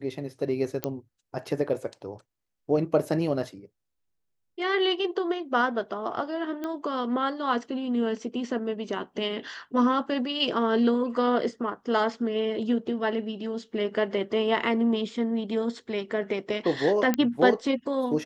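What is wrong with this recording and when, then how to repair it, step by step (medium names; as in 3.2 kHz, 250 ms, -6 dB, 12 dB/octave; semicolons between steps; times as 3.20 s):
0.84 s: pop -12 dBFS
6.64 s: pop -20 dBFS
17.14 s: pop -11 dBFS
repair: de-click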